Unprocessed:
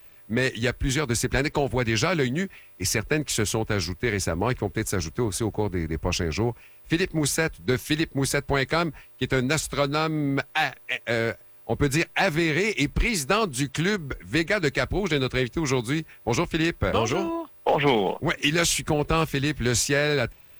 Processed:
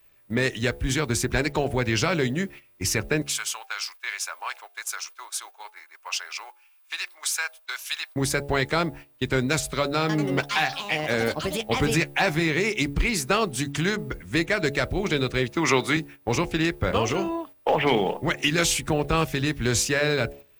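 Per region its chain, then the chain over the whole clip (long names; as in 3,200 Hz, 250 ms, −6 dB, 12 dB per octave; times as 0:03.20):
0:03.22–0:08.16: high-pass filter 970 Hz 24 dB per octave + notch filter 1,900 Hz, Q 8.3
0:10.00–0:12.48: delay with pitch and tempo change per echo 91 ms, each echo +5 semitones, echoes 3, each echo −6 dB + double-tracking delay 13 ms −11 dB
0:15.52–0:15.97: high-pass filter 140 Hz + parametric band 1,600 Hz +9.5 dB 2.9 octaves + notch filter 1,600 Hz, Q 13
whole clip: hum removal 70.93 Hz, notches 12; noise gate −41 dBFS, range −8 dB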